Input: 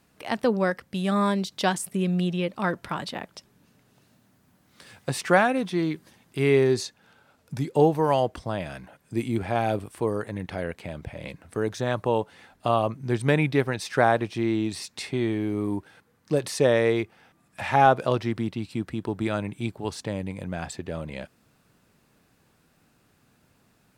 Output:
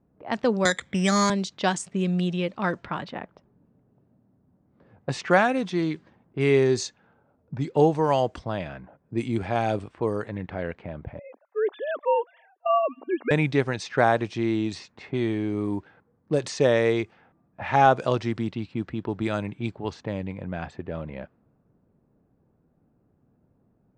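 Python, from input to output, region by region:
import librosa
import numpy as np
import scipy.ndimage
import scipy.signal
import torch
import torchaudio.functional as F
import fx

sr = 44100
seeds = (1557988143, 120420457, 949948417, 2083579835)

y = fx.chain(x, sr, fx.lowpass_res(hz=2200.0, q=4.4),
    fx.resample_bad(factor=8, down='filtered', up='hold'),
    fx.band_squash(depth_pct=70), at=(0.65, 1.3))
y = fx.chain(y, sr, fx.sine_speech(),
    fx.brickwall_highpass(low_hz=240.0),
    fx.echo_wet_highpass(ms=271, feedback_pct=47, hz=3000.0, wet_db=-21.0), at=(11.19, 13.31))
y = fx.dynamic_eq(y, sr, hz=6600.0, q=3.4, threshold_db=-54.0, ratio=4.0, max_db=5)
y = fx.env_lowpass(y, sr, base_hz=560.0, full_db=-21.5)
y = scipy.signal.sosfilt(scipy.signal.butter(6, 8400.0, 'lowpass', fs=sr, output='sos'), y)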